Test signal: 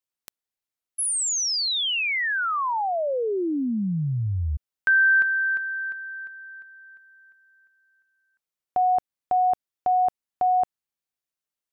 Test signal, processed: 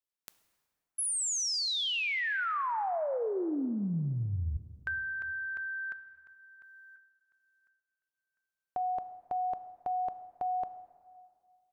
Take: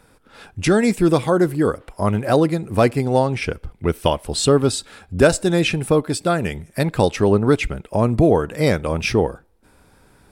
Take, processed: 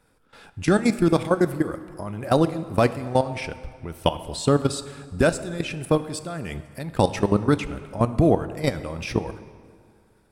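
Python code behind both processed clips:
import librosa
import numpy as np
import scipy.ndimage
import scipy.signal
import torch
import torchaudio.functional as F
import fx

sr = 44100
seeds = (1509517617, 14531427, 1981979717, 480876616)

y = fx.dynamic_eq(x, sr, hz=430.0, q=3.7, threshold_db=-29.0, ratio=4.0, max_db=-5)
y = fx.level_steps(y, sr, step_db=16)
y = fx.rev_plate(y, sr, seeds[0], rt60_s=2.1, hf_ratio=0.65, predelay_ms=0, drr_db=12.0)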